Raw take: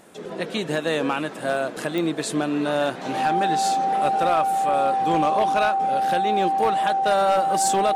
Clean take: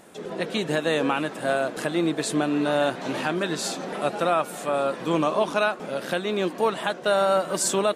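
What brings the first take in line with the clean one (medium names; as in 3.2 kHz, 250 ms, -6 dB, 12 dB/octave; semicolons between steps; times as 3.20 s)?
clip repair -13 dBFS; de-click; band-stop 780 Hz, Q 30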